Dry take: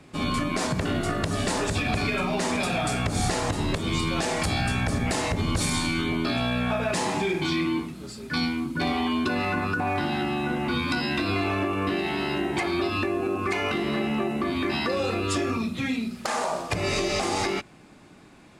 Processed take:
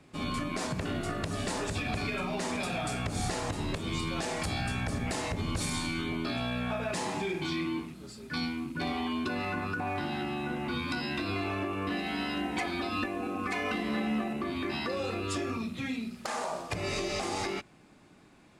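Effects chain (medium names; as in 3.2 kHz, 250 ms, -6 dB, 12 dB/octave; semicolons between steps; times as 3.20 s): rattle on loud lows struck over -35 dBFS, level -38 dBFS; 11.90–14.33 s: comb 4 ms, depth 85%; trim -7 dB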